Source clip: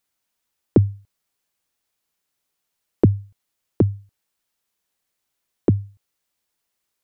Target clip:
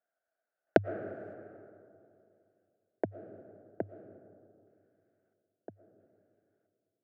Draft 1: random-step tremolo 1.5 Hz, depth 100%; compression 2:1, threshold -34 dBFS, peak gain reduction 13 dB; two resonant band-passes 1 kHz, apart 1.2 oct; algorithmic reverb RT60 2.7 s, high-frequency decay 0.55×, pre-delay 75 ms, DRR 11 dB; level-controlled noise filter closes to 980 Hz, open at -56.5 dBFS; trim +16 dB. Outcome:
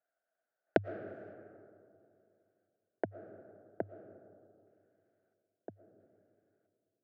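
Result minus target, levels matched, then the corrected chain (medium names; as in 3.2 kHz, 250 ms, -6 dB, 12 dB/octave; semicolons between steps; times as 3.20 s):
compression: peak gain reduction +4.5 dB
random-step tremolo 1.5 Hz, depth 100%; compression 2:1, threshold -25 dBFS, peak gain reduction 8.5 dB; two resonant band-passes 1 kHz, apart 1.2 oct; algorithmic reverb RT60 2.7 s, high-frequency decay 0.55×, pre-delay 75 ms, DRR 11 dB; level-controlled noise filter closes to 980 Hz, open at -56.5 dBFS; trim +16 dB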